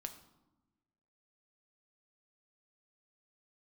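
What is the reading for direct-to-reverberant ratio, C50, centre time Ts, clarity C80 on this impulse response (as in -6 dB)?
6.5 dB, 11.5 dB, 11 ms, 13.5 dB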